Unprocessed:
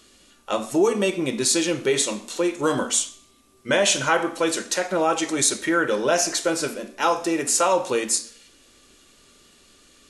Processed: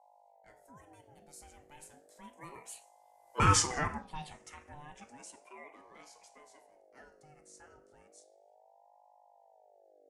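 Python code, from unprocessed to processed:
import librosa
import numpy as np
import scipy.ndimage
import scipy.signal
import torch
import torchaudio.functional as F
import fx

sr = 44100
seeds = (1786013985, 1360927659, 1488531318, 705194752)

y = fx.doppler_pass(x, sr, speed_mps=29, closest_m=3.1, pass_at_s=3.51)
y = fx.env_phaser(y, sr, low_hz=470.0, high_hz=3300.0, full_db=-27.5)
y = fx.add_hum(y, sr, base_hz=50, snr_db=24)
y = fx.ring_lfo(y, sr, carrier_hz=600.0, swing_pct=30, hz=0.33)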